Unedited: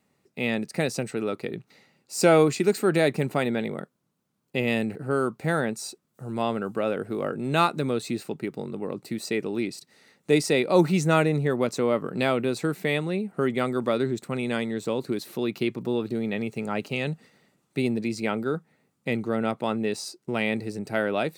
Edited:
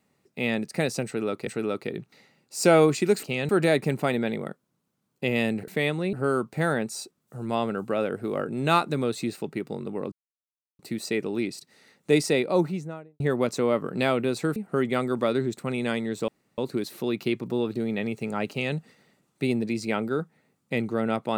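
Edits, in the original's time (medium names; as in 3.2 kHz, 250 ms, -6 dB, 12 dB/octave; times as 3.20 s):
1.05–1.47 s: loop, 2 plays
8.99 s: insert silence 0.67 s
10.39–11.40 s: studio fade out
12.76–13.21 s: move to 5.00 s
14.93 s: insert room tone 0.30 s
16.85–17.11 s: copy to 2.81 s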